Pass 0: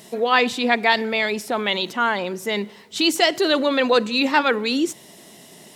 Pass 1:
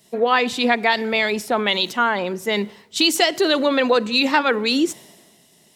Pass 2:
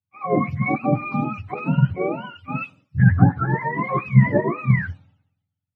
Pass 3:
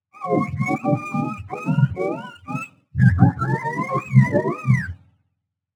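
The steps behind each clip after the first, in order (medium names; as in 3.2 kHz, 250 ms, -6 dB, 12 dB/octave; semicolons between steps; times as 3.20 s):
compression 6:1, threshold -19 dBFS, peak gain reduction 7.5 dB; three bands expanded up and down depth 70%; trim +5 dB
spectrum inverted on a logarithmic axis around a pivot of 730 Hz; three bands expanded up and down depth 100%; trim -3 dB
median filter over 9 samples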